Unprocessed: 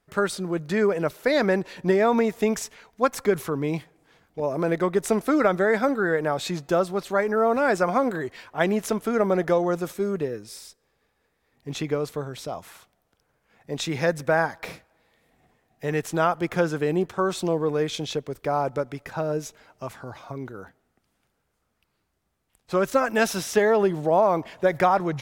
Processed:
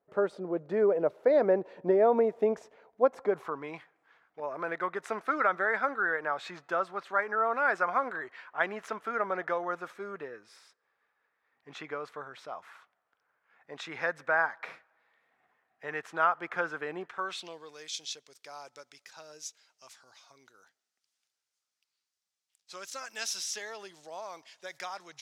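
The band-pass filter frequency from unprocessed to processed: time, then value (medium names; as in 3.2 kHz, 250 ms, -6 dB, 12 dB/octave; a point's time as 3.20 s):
band-pass filter, Q 1.6
3.15 s 550 Hz
3.68 s 1.4 kHz
17.00 s 1.4 kHz
17.75 s 5.6 kHz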